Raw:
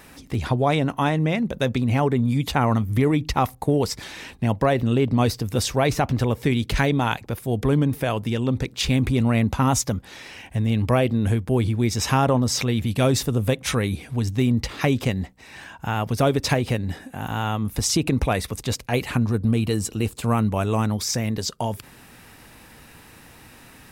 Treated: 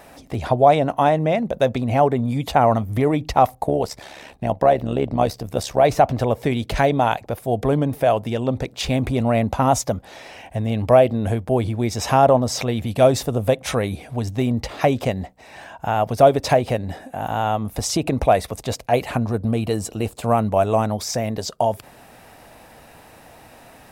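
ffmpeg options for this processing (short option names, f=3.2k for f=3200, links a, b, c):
-filter_complex "[0:a]asettb=1/sr,asplit=3[a][b][c];[a]atrim=end=3.674[d];[b]atrim=start=3.67:end=5.84,asetpts=PTS-STARTPTS,afade=t=in:d=0.004:c=qsin,afade=t=out:st=2.166:d=0.004:c=qsin,tremolo=f=70:d=0.667[e];[c]atrim=start=5.836[f];[d][e]acrossfade=d=0.004:c1=hsin:c2=qsin[g];[g][f]acrossfade=d=0.004:c1=qsin:c2=hsin,equalizer=f=660:t=o:w=0.86:g=14,volume=-2dB"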